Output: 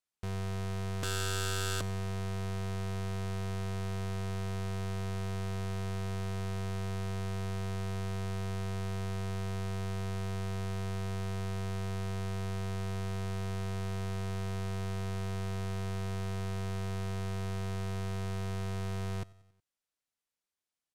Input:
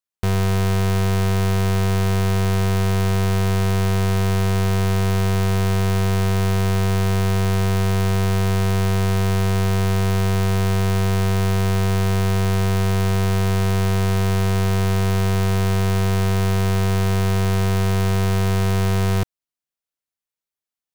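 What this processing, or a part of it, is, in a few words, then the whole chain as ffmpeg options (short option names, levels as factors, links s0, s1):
overflowing digital effects unit: -filter_complex "[0:a]asettb=1/sr,asplit=3[s0][s1][s2];[s0]atrim=end=1.034[s3];[s1]atrim=start=1.03:end=1.81,asetpts=PTS-STARTPTS,afade=t=in:d=0.004:c=qsin,afade=t=out:st=0.776:d=0.004:c=qsin,lowshelf=f=640:t=q:w=3:g=-8.5[s4];[s2]atrim=start=1.806[s5];[s3][s4]acrossfade=d=0.004:c1=hsin:c2=qsin[s6];[s6][s5]acrossfade=d=0.004:c1=qsin:c2=hsin,aeval=exprs='(mod(28.2*val(0)+1,2)-1)/28.2':c=same,lowpass=11000,aecho=1:1:92|184|276|368:0.075|0.0442|0.0261|0.0154"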